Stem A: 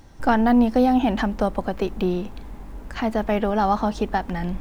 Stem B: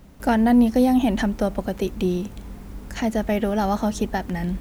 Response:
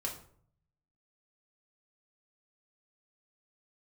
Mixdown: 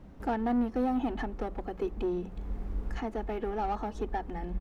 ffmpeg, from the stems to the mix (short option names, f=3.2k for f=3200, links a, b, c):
-filter_complex "[0:a]highpass=f=130:p=1,asoftclip=type=hard:threshold=-22dB,volume=-10dB,asplit=2[a][b];[1:a]bandreject=f=60:t=h:w=6,bandreject=f=120:t=h:w=6,bandreject=f=180:t=h:w=6,asubboost=boost=4:cutoff=58,adelay=2,volume=-2dB[c];[b]apad=whole_len=203033[d];[c][d]sidechaincompress=threshold=-42dB:ratio=8:attack=7.4:release=506[e];[a][e]amix=inputs=2:normalize=0,lowpass=f=1.2k:p=1"